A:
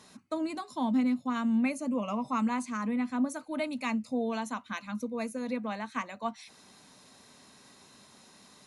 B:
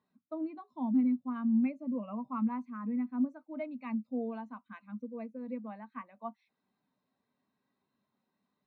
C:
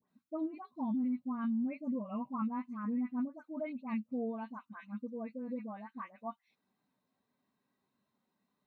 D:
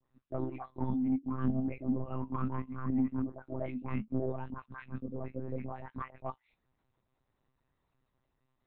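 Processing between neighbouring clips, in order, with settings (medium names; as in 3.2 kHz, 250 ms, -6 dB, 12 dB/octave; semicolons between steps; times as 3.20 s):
low-pass 3.1 kHz 12 dB/octave; spectral contrast expander 1.5:1; trim -1.5 dB
peak limiter -29 dBFS, peak gain reduction 9 dB; phase dispersion highs, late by 85 ms, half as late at 1.6 kHz
flange 0.66 Hz, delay 3.7 ms, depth 8.6 ms, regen +64%; saturation -30.5 dBFS, distortion -21 dB; monotone LPC vocoder at 8 kHz 130 Hz; trim +8 dB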